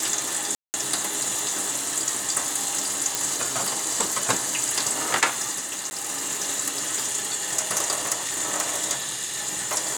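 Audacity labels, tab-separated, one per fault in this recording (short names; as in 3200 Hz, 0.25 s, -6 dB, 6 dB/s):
0.550000	0.740000	gap 0.189 s
3.150000	3.150000	pop
5.900000	5.910000	gap 10 ms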